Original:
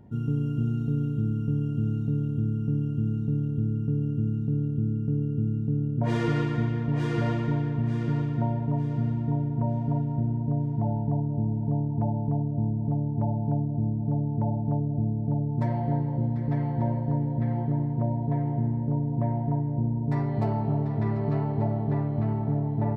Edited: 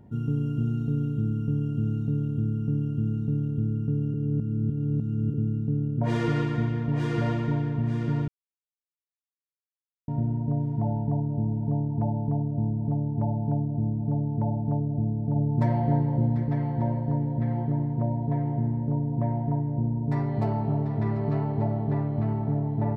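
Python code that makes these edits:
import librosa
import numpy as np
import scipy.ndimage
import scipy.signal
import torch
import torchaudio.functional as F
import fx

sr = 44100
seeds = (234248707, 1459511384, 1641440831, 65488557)

y = fx.edit(x, sr, fx.reverse_span(start_s=4.14, length_s=1.2),
    fx.silence(start_s=8.28, length_s=1.8),
    fx.clip_gain(start_s=15.36, length_s=1.08, db=3.0), tone=tone)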